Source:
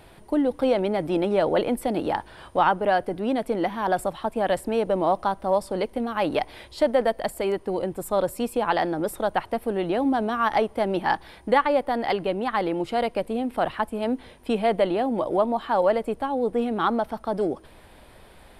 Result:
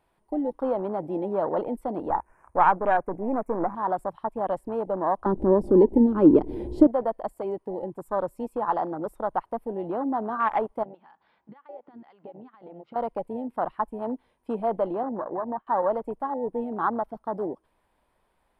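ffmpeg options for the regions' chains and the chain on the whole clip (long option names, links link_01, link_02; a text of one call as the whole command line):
ffmpeg -i in.wav -filter_complex "[0:a]asettb=1/sr,asplit=3[link_01][link_02][link_03];[link_01]atrim=end=2.104[link_04];[link_02]atrim=start=2.1:end=3.75,asetpts=PTS-STARTPTS,afade=type=in:duration=0.004:curve=qsin,afade=type=out:start_time=1.646:duration=0.004:curve=qsin,aeval=exprs='if(lt(val(0),0),0.447*val(0),val(0))':channel_layout=same,acontrast=37,asuperstop=centerf=3800:order=8:qfactor=1.1[link_05];[link_03]atrim=start=3.746[link_06];[link_04][link_05]acrossfade=duration=0.004:curve1=hsin:curve2=qsin[link_07];[link_07][link_06]acrossfade=duration=0.004:curve1=qsin:curve2=hsin,asettb=1/sr,asplit=3[link_08][link_09][link_10];[link_08]atrim=end=5.264[link_11];[link_09]atrim=start=5.26:end=6.87,asetpts=PTS-STARTPTS,afade=type=in:duration=0.004:curve=qsin,afade=type=out:start_time=1.606:duration=0.004:curve=qsin,lowshelf=frequency=520:width_type=q:width=3:gain=13,acompressor=mode=upward:threshold=-16dB:ratio=2.5:attack=3.2:release=140:knee=2.83:detection=peak[link_12];[link_10]atrim=start=6.866[link_13];[link_11][link_12]acrossfade=duration=0.004:curve1=hsin:curve2=qsin[link_14];[link_14][link_13]acrossfade=duration=0.004:curve1=qsin:curve2=hsin,asettb=1/sr,asplit=3[link_15][link_16][link_17];[link_15]atrim=end=10.834[link_18];[link_16]atrim=start=10.83:end=12.96,asetpts=PTS-STARTPTS,afade=type=in:duration=0.004:curve=qsin,afade=type=out:start_time=2.126:duration=0.004:curve=qsin,highpass=130,equalizer=frequency=230:width_type=q:width=4:gain=4,equalizer=frequency=330:width_type=q:width=4:gain=-6,equalizer=frequency=1400:width_type=q:width=4:gain=4,lowpass=frequency=4500:width=0.5412,lowpass=frequency=4500:width=1.3066,acompressor=threshold=-33dB:ratio=6:attack=3.2:release=140:knee=1:detection=peak[link_19];[link_17]atrim=start=12.956[link_20];[link_18][link_19]acrossfade=duration=0.004:curve1=hsin:curve2=qsin[link_21];[link_21][link_20]acrossfade=duration=0.004:curve1=qsin:curve2=hsin,asettb=1/sr,asplit=3[link_22][link_23][link_24];[link_22]atrim=end=15.034[link_25];[link_23]atrim=start=15.03:end=15.67,asetpts=PTS-STARTPTS,afade=type=in:duration=0.004:curve=qsin,afade=type=out:start_time=0.636:duration=0.004:curve=qsin,lowpass=frequency=2400:width=0.5412,lowpass=frequency=2400:width=1.3066,agate=range=-33dB:threshold=-28dB:ratio=3:release=100:detection=peak,acompressor=threshold=-22dB:ratio=4:attack=3.2:release=140:knee=1:detection=peak[link_26];[link_24]atrim=start=15.666[link_27];[link_25][link_26]acrossfade=duration=0.004:curve1=hsin:curve2=qsin[link_28];[link_28][link_27]acrossfade=duration=0.004:curve1=qsin:curve2=hsin,afwtdn=0.0501,equalizer=frequency=100:width_type=o:width=0.67:gain=-5,equalizer=frequency=1000:width_type=o:width=0.67:gain=7,equalizer=frequency=4000:width_type=o:width=0.67:gain=-4,volume=-5.5dB" out.wav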